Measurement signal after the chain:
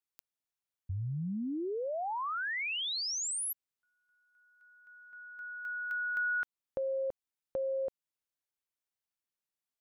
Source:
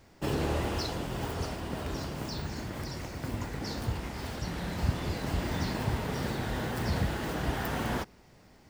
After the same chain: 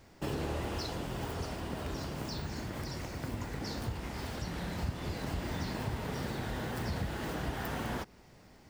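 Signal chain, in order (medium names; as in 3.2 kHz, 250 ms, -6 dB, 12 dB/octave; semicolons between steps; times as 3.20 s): compression 2:1, threshold -36 dBFS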